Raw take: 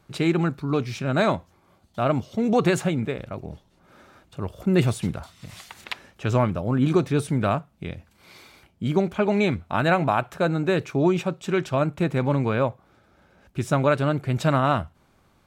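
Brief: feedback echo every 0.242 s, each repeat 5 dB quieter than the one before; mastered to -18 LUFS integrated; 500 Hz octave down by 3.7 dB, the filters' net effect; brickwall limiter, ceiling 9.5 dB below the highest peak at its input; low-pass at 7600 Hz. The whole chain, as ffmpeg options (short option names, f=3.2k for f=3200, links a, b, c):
-af "lowpass=7.6k,equalizer=f=500:t=o:g=-5,alimiter=limit=-18.5dB:level=0:latency=1,aecho=1:1:242|484|726|968|1210|1452|1694:0.562|0.315|0.176|0.0988|0.0553|0.031|0.0173,volume=10dB"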